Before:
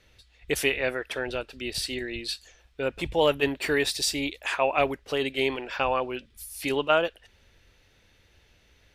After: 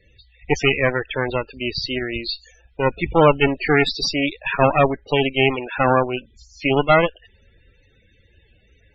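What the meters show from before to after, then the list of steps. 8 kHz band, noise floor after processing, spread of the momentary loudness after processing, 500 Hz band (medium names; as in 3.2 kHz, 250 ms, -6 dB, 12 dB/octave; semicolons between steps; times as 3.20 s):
-4.5 dB, -57 dBFS, 10 LU, +7.5 dB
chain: resampled via 16 kHz; Chebyshev shaper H 4 -11 dB, 6 -6 dB, 8 -24 dB, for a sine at -7.5 dBFS; loudest bins only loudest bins 32; trim +7 dB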